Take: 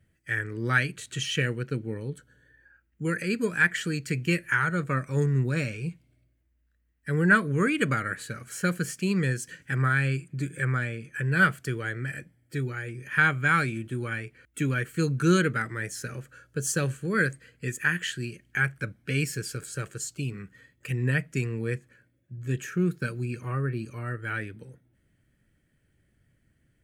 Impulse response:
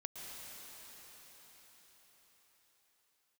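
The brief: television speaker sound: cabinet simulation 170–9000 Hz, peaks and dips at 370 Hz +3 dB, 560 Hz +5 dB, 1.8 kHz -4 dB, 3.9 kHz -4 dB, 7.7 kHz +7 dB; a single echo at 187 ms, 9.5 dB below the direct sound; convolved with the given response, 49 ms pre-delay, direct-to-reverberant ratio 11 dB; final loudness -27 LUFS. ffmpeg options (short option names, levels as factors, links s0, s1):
-filter_complex "[0:a]aecho=1:1:187:0.335,asplit=2[s0][s1];[1:a]atrim=start_sample=2205,adelay=49[s2];[s1][s2]afir=irnorm=-1:irlink=0,volume=0.316[s3];[s0][s3]amix=inputs=2:normalize=0,highpass=f=170:w=0.5412,highpass=f=170:w=1.3066,equalizer=f=370:t=q:w=4:g=3,equalizer=f=560:t=q:w=4:g=5,equalizer=f=1800:t=q:w=4:g=-4,equalizer=f=3900:t=q:w=4:g=-4,equalizer=f=7700:t=q:w=4:g=7,lowpass=f=9000:w=0.5412,lowpass=f=9000:w=1.3066,volume=1.19"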